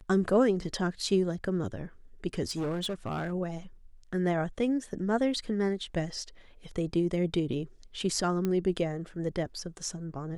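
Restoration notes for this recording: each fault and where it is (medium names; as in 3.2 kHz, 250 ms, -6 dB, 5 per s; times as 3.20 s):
2.43–3.33 s: clipped -28.5 dBFS
8.45 s: pop -18 dBFS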